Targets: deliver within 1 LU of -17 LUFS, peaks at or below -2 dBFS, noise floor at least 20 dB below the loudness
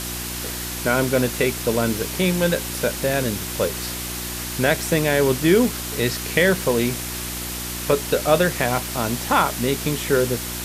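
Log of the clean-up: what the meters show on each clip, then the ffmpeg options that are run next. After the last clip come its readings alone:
hum 60 Hz; harmonics up to 360 Hz; hum level -32 dBFS; noise floor -30 dBFS; noise floor target -42 dBFS; loudness -21.5 LUFS; peak -3.0 dBFS; loudness target -17.0 LUFS
-> -af "bandreject=f=60:t=h:w=4,bandreject=f=120:t=h:w=4,bandreject=f=180:t=h:w=4,bandreject=f=240:t=h:w=4,bandreject=f=300:t=h:w=4,bandreject=f=360:t=h:w=4"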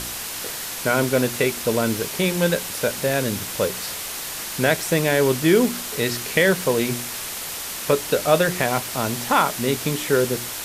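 hum none; noise floor -31 dBFS; noise floor target -42 dBFS
-> -af "afftdn=nr=11:nf=-31"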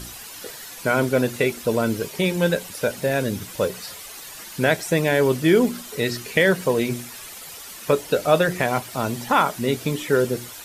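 noise floor -39 dBFS; noise floor target -42 dBFS
-> -af "afftdn=nr=6:nf=-39"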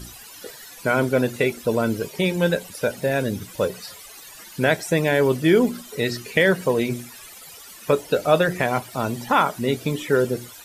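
noise floor -43 dBFS; loudness -22.0 LUFS; peak -3.0 dBFS; loudness target -17.0 LUFS
-> -af "volume=5dB,alimiter=limit=-2dB:level=0:latency=1"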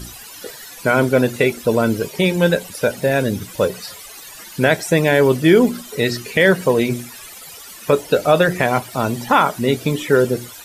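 loudness -17.5 LUFS; peak -2.0 dBFS; noise floor -38 dBFS

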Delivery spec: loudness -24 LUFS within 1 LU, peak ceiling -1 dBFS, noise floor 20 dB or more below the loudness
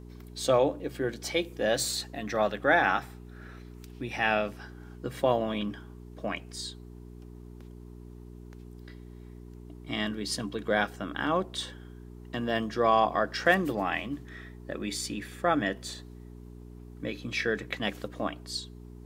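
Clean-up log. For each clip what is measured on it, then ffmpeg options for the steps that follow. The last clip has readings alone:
hum 60 Hz; harmonics up to 420 Hz; hum level -43 dBFS; loudness -30.0 LUFS; peak -9.0 dBFS; loudness target -24.0 LUFS
-> -af "bandreject=f=60:t=h:w=4,bandreject=f=120:t=h:w=4,bandreject=f=180:t=h:w=4,bandreject=f=240:t=h:w=4,bandreject=f=300:t=h:w=4,bandreject=f=360:t=h:w=4,bandreject=f=420:t=h:w=4"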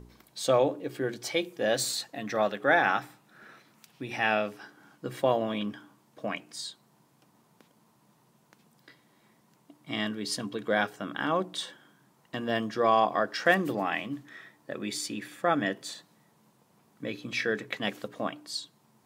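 hum none; loudness -30.0 LUFS; peak -9.0 dBFS; loudness target -24.0 LUFS
-> -af "volume=6dB"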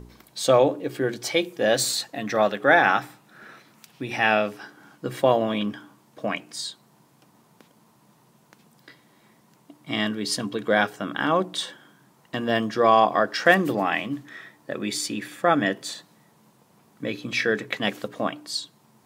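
loudness -24.0 LUFS; peak -3.0 dBFS; noise floor -60 dBFS

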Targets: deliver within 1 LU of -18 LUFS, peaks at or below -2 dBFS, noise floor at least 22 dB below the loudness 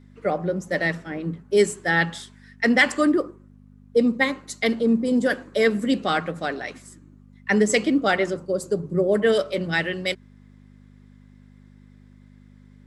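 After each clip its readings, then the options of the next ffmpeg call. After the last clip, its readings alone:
hum 50 Hz; harmonics up to 250 Hz; hum level -43 dBFS; loudness -22.5 LUFS; peak -4.5 dBFS; loudness target -18.0 LUFS
-> -af "bandreject=f=50:t=h:w=4,bandreject=f=100:t=h:w=4,bandreject=f=150:t=h:w=4,bandreject=f=200:t=h:w=4,bandreject=f=250:t=h:w=4"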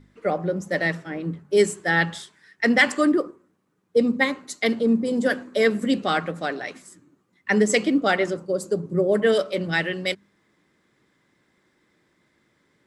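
hum none; loudness -22.5 LUFS; peak -4.5 dBFS; loudness target -18.0 LUFS
-> -af "volume=4.5dB,alimiter=limit=-2dB:level=0:latency=1"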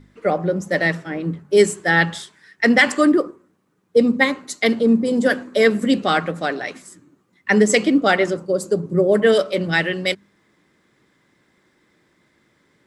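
loudness -18.5 LUFS; peak -2.0 dBFS; noise floor -63 dBFS

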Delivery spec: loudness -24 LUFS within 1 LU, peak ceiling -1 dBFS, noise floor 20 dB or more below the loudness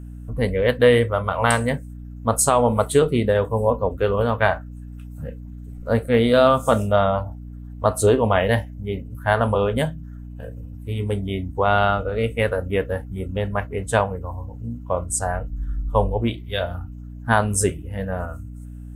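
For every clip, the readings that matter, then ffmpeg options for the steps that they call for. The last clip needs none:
hum 60 Hz; harmonics up to 300 Hz; hum level -33 dBFS; loudness -21.5 LUFS; peak -4.0 dBFS; loudness target -24.0 LUFS
-> -af "bandreject=f=60:t=h:w=4,bandreject=f=120:t=h:w=4,bandreject=f=180:t=h:w=4,bandreject=f=240:t=h:w=4,bandreject=f=300:t=h:w=4"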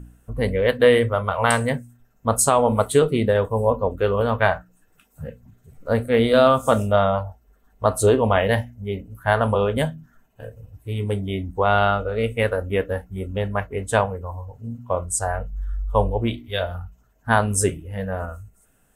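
hum none; loudness -21.5 LUFS; peak -4.0 dBFS; loudness target -24.0 LUFS
-> -af "volume=-2.5dB"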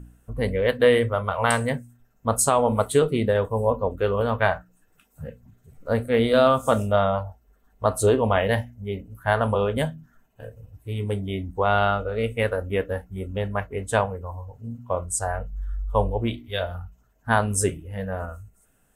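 loudness -24.0 LUFS; peak -6.5 dBFS; noise floor -63 dBFS

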